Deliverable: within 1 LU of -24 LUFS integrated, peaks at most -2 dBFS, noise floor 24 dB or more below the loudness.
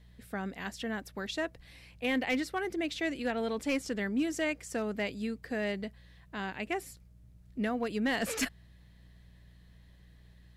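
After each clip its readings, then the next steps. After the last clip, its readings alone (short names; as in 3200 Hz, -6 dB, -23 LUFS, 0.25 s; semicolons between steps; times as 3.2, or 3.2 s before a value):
clipped 0.4%; flat tops at -23.5 dBFS; hum 60 Hz; harmonics up to 180 Hz; hum level -55 dBFS; loudness -34.5 LUFS; peak -23.5 dBFS; loudness target -24.0 LUFS
-> clip repair -23.5 dBFS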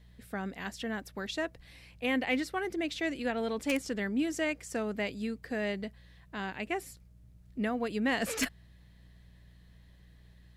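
clipped 0.0%; hum 60 Hz; harmonics up to 180 Hz; hum level -55 dBFS
-> de-hum 60 Hz, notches 3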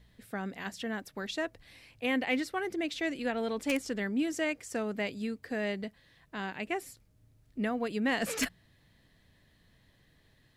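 hum none; loudness -34.0 LUFS; peak -14.5 dBFS; loudness target -24.0 LUFS
-> gain +10 dB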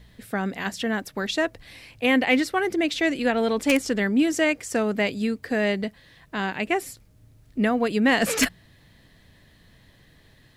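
loudness -24.0 LUFS; peak -4.5 dBFS; noise floor -56 dBFS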